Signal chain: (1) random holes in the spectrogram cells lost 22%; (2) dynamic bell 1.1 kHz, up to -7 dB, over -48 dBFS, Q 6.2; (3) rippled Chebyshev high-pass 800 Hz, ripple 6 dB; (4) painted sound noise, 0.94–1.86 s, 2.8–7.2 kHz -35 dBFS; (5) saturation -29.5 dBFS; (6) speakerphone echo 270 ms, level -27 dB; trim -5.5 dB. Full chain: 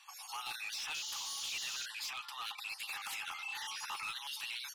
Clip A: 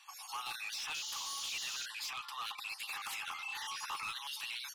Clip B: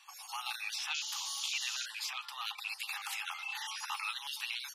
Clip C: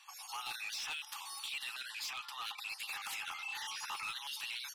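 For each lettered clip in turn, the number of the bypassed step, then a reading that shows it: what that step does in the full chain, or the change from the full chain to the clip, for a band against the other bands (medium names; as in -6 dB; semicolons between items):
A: 2, 1 kHz band +2.0 dB; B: 5, distortion -12 dB; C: 4, 8 kHz band -3.0 dB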